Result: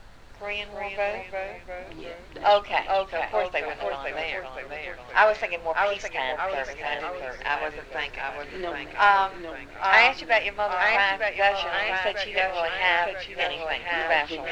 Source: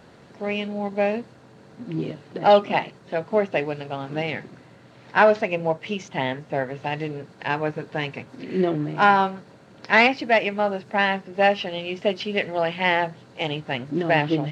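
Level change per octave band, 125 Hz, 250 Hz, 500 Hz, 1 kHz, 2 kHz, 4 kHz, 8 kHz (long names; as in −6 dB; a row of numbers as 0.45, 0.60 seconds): −17.5 dB, −15.5 dB, −4.5 dB, −1.0 dB, +1.0 dB, +0.5 dB, can't be measured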